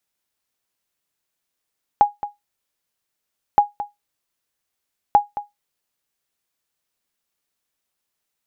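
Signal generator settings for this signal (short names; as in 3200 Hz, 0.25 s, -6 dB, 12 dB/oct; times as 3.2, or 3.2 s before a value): sonar ping 824 Hz, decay 0.17 s, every 1.57 s, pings 3, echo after 0.22 s, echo -14 dB -4 dBFS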